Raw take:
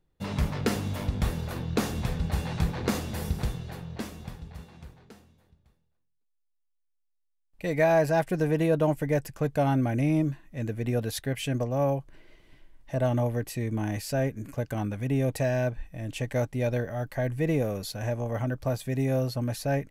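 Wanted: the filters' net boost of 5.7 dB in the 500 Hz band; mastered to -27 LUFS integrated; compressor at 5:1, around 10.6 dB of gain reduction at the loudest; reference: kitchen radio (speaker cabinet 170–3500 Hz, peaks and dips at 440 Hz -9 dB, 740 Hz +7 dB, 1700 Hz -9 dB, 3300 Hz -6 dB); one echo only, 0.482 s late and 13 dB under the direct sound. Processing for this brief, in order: bell 500 Hz +8 dB; compressor 5:1, threshold -26 dBFS; speaker cabinet 170–3500 Hz, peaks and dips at 440 Hz -9 dB, 740 Hz +7 dB, 1700 Hz -9 dB, 3300 Hz -6 dB; echo 0.482 s -13 dB; gain +6 dB

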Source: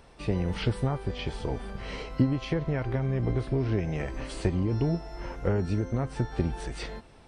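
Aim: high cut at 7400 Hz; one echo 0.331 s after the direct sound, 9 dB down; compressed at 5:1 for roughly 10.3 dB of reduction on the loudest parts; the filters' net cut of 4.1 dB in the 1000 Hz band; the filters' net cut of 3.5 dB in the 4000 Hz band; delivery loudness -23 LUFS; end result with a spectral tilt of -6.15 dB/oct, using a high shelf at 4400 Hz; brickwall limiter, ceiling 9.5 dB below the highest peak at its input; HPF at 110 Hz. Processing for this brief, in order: HPF 110 Hz; LPF 7400 Hz; bell 1000 Hz -5.5 dB; bell 4000 Hz -6 dB; high shelf 4400 Hz +3.5 dB; compressor 5:1, threshold -31 dBFS; limiter -28 dBFS; echo 0.331 s -9 dB; gain +15.5 dB

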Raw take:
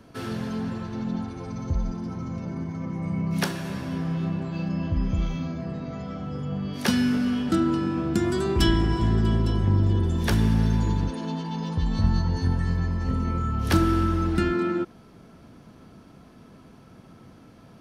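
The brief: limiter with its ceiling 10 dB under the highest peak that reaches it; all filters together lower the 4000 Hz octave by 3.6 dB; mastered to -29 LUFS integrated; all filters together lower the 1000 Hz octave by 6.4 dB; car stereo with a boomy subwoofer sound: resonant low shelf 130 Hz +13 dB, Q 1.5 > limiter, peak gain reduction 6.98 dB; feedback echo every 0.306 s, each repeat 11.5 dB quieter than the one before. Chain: bell 1000 Hz -8.5 dB; bell 4000 Hz -4.5 dB; limiter -18.5 dBFS; resonant low shelf 130 Hz +13 dB, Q 1.5; feedback echo 0.306 s, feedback 27%, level -11.5 dB; gain -7.5 dB; limiter -18 dBFS

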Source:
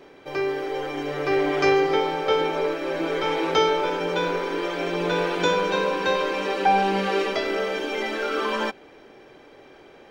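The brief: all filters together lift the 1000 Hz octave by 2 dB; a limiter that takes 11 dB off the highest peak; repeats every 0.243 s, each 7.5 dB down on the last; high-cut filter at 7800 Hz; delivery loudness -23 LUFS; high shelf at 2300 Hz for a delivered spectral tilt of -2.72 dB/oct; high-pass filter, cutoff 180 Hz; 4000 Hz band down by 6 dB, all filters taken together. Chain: HPF 180 Hz; LPF 7800 Hz; bell 1000 Hz +3.5 dB; high shelf 2300 Hz -4.5 dB; bell 4000 Hz -4 dB; limiter -18.5 dBFS; feedback echo 0.243 s, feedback 42%, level -7.5 dB; gain +3 dB

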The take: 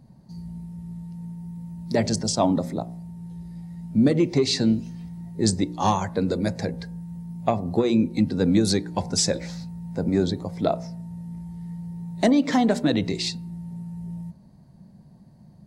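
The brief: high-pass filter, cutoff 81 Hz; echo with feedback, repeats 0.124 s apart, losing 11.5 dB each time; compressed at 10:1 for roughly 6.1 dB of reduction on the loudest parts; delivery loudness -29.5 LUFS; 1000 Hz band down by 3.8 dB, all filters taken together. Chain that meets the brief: HPF 81 Hz; bell 1000 Hz -5.5 dB; compressor 10:1, threshold -21 dBFS; feedback echo 0.124 s, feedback 27%, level -11.5 dB; gain -0.5 dB

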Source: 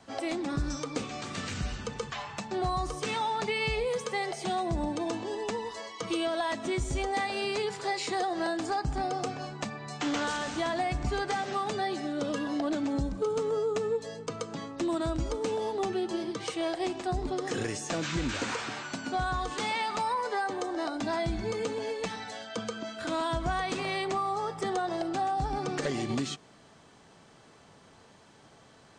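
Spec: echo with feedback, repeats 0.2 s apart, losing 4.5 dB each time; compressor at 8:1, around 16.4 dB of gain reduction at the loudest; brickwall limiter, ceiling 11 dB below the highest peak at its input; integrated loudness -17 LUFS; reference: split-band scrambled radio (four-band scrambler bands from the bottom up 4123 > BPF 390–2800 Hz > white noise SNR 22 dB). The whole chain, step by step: compressor 8:1, threshold -44 dBFS; limiter -40 dBFS; feedback echo 0.2 s, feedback 60%, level -4.5 dB; four-band scrambler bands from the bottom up 4123; BPF 390–2800 Hz; white noise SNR 22 dB; gain +28.5 dB

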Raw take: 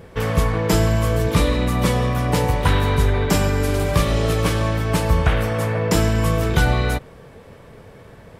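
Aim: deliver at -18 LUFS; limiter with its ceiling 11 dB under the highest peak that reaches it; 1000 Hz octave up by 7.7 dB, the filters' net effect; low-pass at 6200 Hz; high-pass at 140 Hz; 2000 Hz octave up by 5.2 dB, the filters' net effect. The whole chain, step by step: HPF 140 Hz; LPF 6200 Hz; bell 1000 Hz +8.5 dB; bell 2000 Hz +3.5 dB; gain +4 dB; limiter -9 dBFS

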